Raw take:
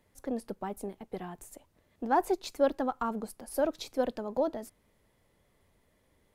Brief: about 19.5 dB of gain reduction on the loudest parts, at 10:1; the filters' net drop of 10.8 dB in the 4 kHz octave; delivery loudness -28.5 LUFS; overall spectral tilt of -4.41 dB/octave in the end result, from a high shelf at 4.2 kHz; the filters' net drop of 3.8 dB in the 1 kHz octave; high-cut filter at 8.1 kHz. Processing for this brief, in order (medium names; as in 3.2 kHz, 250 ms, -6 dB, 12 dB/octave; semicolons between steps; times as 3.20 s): low-pass 8.1 kHz; peaking EQ 1 kHz -4.5 dB; peaking EQ 4 kHz -8 dB; treble shelf 4.2 kHz -8 dB; compression 10:1, threshold -43 dBFS; trim +20.5 dB